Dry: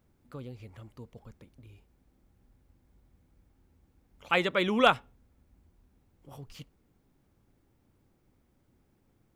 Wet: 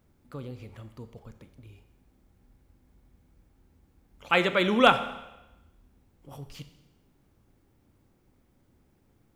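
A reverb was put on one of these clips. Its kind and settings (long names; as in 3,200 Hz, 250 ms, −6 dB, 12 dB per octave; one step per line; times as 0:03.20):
four-comb reverb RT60 0.98 s, combs from 28 ms, DRR 10.5 dB
level +3 dB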